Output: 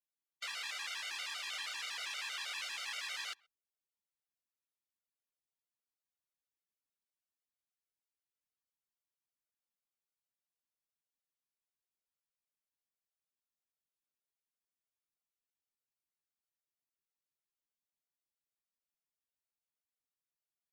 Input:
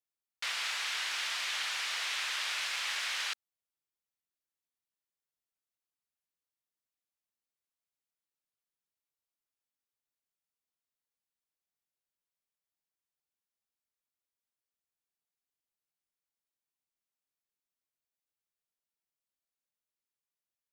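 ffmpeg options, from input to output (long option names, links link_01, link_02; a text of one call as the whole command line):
ffmpeg -i in.wav -filter_complex "[0:a]asplit=2[link_01][link_02];[link_02]adelay=130,highpass=300,lowpass=3400,asoftclip=type=hard:threshold=-31.5dB,volume=-28dB[link_03];[link_01][link_03]amix=inputs=2:normalize=0,afftfilt=real='re*gt(sin(2*PI*6.3*pts/sr)*(1-2*mod(floor(b*sr/1024/390),2)),0)':imag='im*gt(sin(2*PI*6.3*pts/sr)*(1-2*mod(floor(b*sr/1024/390),2)),0)':win_size=1024:overlap=0.75,volume=-3.5dB" out.wav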